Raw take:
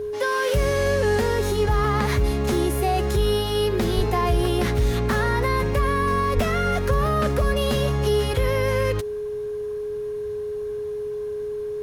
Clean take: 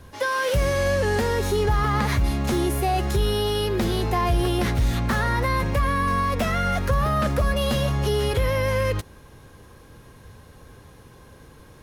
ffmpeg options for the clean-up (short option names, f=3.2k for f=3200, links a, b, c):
-filter_complex "[0:a]bandreject=f=420:w=30,asplit=3[a][b][c];[a]afade=t=out:st=3.96:d=0.02[d];[b]highpass=f=140:w=0.5412,highpass=f=140:w=1.3066,afade=t=in:st=3.96:d=0.02,afade=t=out:st=4.08:d=0.02[e];[c]afade=t=in:st=4.08:d=0.02[f];[d][e][f]amix=inputs=3:normalize=0,asplit=3[g][h][i];[g]afade=t=out:st=6.35:d=0.02[j];[h]highpass=f=140:w=0.5412,highpass=f=140:w=1.3066,afade=t=in:st=6.35:d=0.02,afade=t=out:st=6.47:d=0.02[k];[i]afade=t=in:st=6.47:d=0.02[l];[j][k][l]amix=inputs=3:normalize=0"